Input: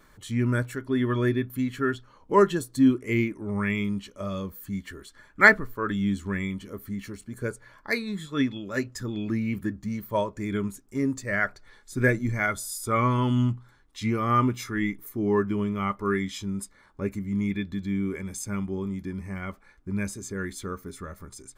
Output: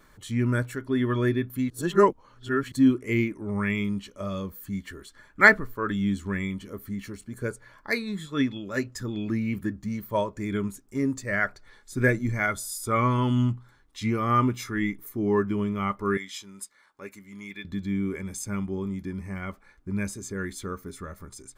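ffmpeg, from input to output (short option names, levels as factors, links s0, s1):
-filter_complex "[0:a]asettb=1/sr,asplit=3[s0][s1][s2];[s0]atrim=end=16.174[s3];[s1]atrim=start=16.17:end=17.65,asetpts=PTS-STARTPTS,afade=t=in:d=0.004:c=qsin,afade=t=out:st=1.476:d=0.004:c=qsin,highpass=f=1300:p=1[s4];[s2]atrim=start=17.646[s5];[s3][s4]acrossfade=d=0.004:c1=hsin:c2=qsin[s6];[s6][s5]acrossfade=d=0.004:c1=qsin:c2=hsin,asplit=3[s7][s8][s9];[s7]atrim=end=1.702[s10];[s8]atrim=start=1.698:end=2.722,asetpts=PTS-STARTPTS,areverse[s11];[s9]atrim=start=2.718[s12];[s10][s11]acrossfade=d=0.004:c1=hsin:c2=hsin[s13];[s13][s12]acrossfade=d=0.004:c1=hsin:c2=hsin"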